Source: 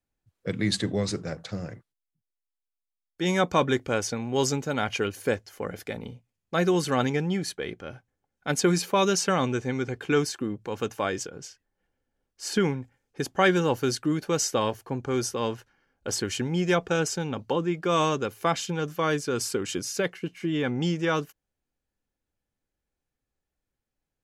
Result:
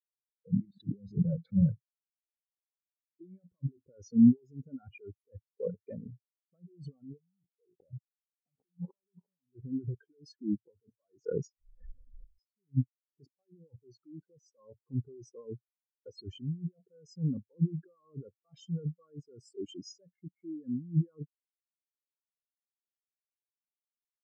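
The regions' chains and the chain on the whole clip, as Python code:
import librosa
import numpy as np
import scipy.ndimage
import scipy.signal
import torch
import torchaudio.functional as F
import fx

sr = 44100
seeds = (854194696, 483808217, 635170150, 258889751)

y = fx.chain(x, sr, fx.block_float(bits=3),
    fx.over_compress(threshold_db=-36.0, ratio=-1.0), at=(0.65, 1.72))
y = fx.chain(y, sr, fx.cheby1_lowpass(hz=970.0, order=3),
    fx.leveller(passes=5), at=(7.19, 9.54))
y = fx.chain(y, sr, fx.leveller(passes=2),
    fx.pre_swell(db_per_s=32.0), at=(10.69, 12.76))
y = fx.over_compress(y, sr, threshold_db=-33.0, ratio=-1.0)
y = fx.spectral_expand(y, sr, expansion=4.0)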